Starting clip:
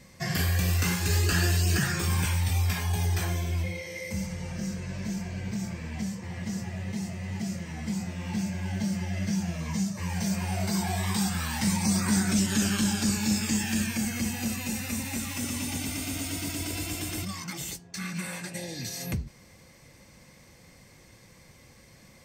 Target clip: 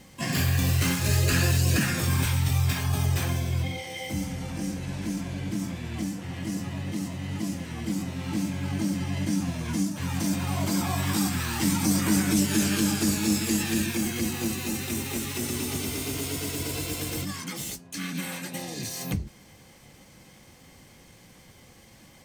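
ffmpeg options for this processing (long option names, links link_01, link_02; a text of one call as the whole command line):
ffmpeg -i in.wav -filter_complex "[0:a]asoftclip=type=hard:threshold=-17dB,asplit=2[link_01][link_02];[link_02]asetrate=66075,aresample=44100,atempo=0.66742,volume=-3dB[link_03];[link_01][link_03]amix=inputs=2:normalize=0" out.wav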